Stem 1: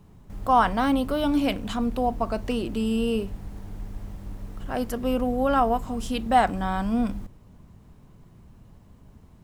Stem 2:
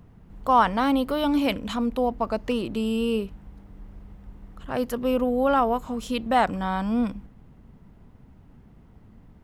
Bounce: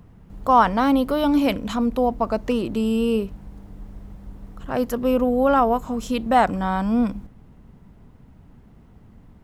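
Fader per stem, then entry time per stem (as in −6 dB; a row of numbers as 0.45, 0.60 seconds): −9.0, +2.0 decibels; 0.00, 0.00 seconds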